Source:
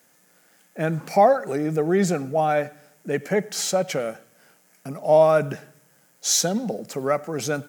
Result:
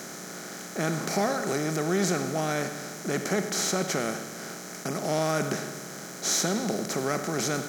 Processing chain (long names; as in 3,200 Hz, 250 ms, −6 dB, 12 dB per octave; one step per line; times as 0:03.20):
compressor on every frequency bin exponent 0.4
flat-topped bell 690 Hz −8 dB 1.3 octaves
level −8 dB